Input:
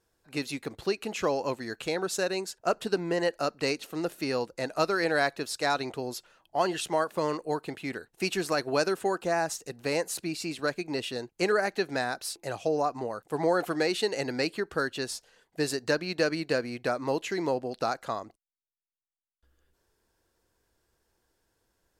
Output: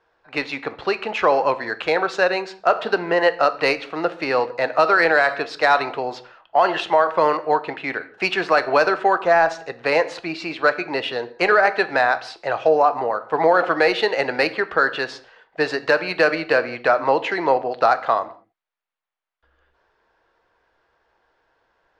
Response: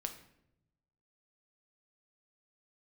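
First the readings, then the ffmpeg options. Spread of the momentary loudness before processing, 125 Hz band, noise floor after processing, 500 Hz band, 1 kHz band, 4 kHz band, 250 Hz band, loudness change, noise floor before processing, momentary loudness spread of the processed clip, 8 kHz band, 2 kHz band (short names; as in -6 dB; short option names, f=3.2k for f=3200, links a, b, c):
8 LU, 0.0 dB, -67 dBFS, +9.5 dB, +13.5 dB, +5.5 dB, +3.5 dB, +10.5 dB, -80 dBFS, 10 LU, n/a, +13.0 dB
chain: -filter_complex "[0:a]acrossover=split=560 6000:gain=0.126 1 0.141[a][b][c];[a][b][c]amix=inputs=3:normalize=0,adynamicsmooth=sensitivity=0.5:basefreq=2.4k,asplit=2[d][e];[1:a]atrim=start_sample=2205,afade=t=out:st=0.27:d=0.01,atrim=end_sample=12348[f];[e][f]afir=irnorm=-1:irlink=0,volume=1dB[g];[d][g]amix=inputs=2:normalize=0,alimiter=level_in=16dB:limit=-1dB:release=50:level=0:latency=1,volume=-4.5dB"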